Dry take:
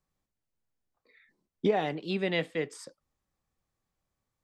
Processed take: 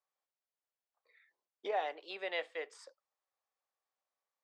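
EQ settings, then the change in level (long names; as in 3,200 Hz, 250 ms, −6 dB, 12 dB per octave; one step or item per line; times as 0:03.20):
high-pass filter 550 Hz 24 dB per octave
high-frequency loss of the air 82 metres
parametric band 2,800 Hz −3 dB 2.2 octaves
−2.5 dB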